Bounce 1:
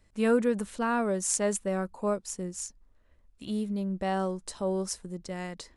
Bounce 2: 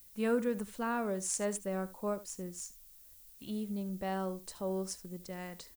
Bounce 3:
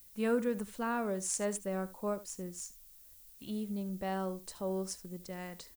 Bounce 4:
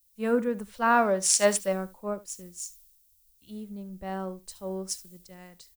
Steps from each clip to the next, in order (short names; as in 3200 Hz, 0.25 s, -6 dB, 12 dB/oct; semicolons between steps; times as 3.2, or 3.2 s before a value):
added noise violet -51 dBFS; echo 74 ms -16.5 dB; gain -6.5 dB
nothing audible
spectral gain 0.7–1.72, 490–6000 Hz +7 dB; three-band expander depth 100%; gain +3 dB